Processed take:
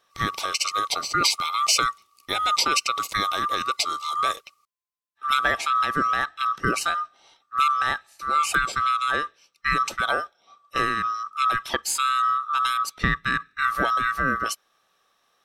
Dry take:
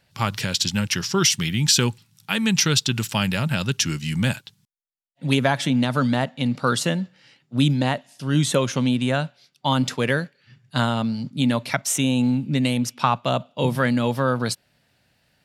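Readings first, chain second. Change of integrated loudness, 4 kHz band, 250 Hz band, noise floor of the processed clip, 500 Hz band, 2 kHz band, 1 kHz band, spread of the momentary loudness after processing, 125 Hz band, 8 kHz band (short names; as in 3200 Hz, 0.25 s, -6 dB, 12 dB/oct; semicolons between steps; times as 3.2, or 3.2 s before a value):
-1.5 dB, -2.5 dB, -15.5 dB, -69 dBFS, -9.0 dB, +2.5 dB, +6.0 dB, 8 LU, -16.5 dB, -4.0 dB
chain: band-swap scrambler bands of 1000 Hz; gain -2.5 dB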